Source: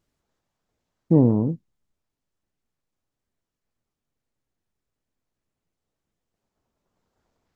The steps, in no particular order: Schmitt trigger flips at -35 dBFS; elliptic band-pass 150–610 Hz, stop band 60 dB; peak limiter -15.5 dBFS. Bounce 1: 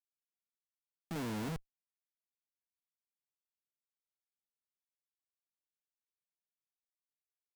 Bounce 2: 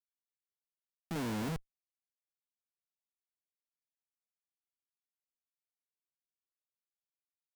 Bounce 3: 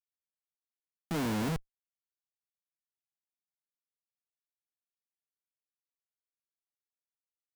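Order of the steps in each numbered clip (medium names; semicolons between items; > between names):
peak limiter > elliptic band-pass > Schmitt trigger; elliptic band-pass > peak limiter > Schmitt trigger; elliptic band-pass > Schmitt trigger > peak limiter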